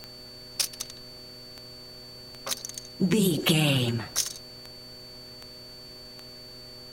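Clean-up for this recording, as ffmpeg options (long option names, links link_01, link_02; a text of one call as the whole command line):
ffmpeg -i in.wav -af "adeclick=threshold=4,bandreject=frequency=123.3:width_type=h:width=4,bandreject=frequency=246.6:width_type=h:width=4,bandreject=frequency=369.9:width_type=h:width=4,bandreject=frequency=493.2:width_type=h:width=4,bandreject=frequency=616.5:width_type=h:width=4,bandreject=frequency=4500:width=30,afftdn=noise_reduction=27:noise_floor=-45" out.wav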